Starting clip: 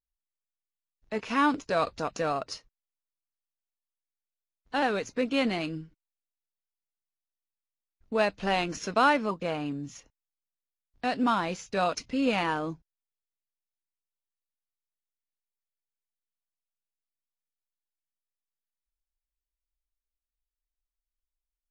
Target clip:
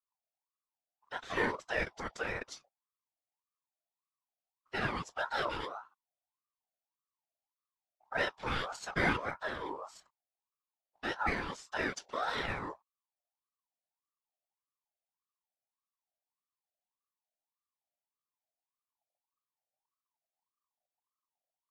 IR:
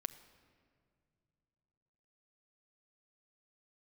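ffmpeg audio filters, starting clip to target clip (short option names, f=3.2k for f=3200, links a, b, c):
-af "afftfilt=real='hypot(re,im)*cos(2*PI*random(0))':imag='hypot(re,im)*sin(2*PI*random(1))':win_size=512:overlap=0.75,aeval=exprs='val(0)*sin(2*PI*920*n/s+920*0.3/1.7*sin(2*PI*1.7*n/s))':c=same,volume=1dB"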